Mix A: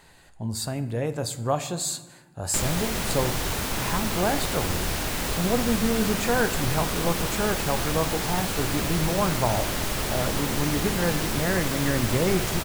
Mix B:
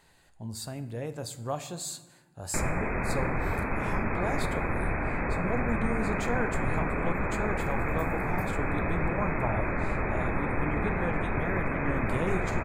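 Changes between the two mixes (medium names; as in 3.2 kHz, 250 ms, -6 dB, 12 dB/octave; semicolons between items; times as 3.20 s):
speech -8.0 dB; background: add brick-wall FIR low-pass 2.6 kHz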